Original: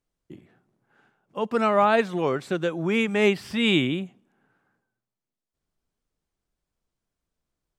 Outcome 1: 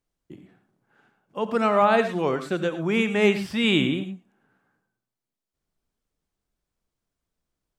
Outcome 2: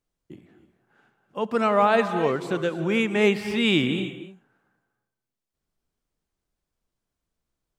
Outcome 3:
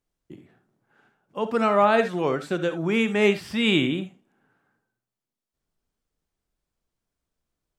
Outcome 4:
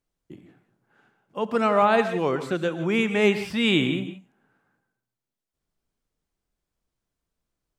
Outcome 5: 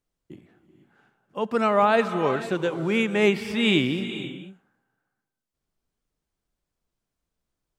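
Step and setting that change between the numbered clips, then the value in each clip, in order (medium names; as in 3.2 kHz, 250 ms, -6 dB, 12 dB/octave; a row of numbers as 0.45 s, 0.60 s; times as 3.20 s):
gated-style reverb, gate: 130 ms, 330 ms, 90 ms, 190 ms, 520 ms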